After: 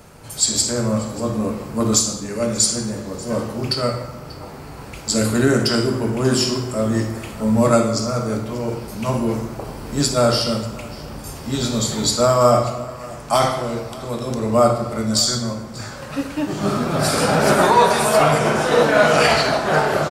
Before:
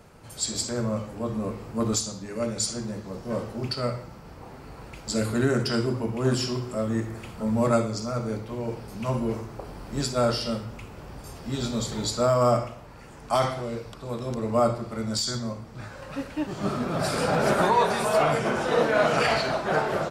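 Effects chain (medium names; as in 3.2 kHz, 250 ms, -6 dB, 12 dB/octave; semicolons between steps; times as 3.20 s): treble shelf 5.3 kHz +7.5 dB; delay 588 ms -20.5 dB; plate-style reverb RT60 1.3 s, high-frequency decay 0.55×, pre-delay 0 ms, DRR 6 dB; trim +6 dB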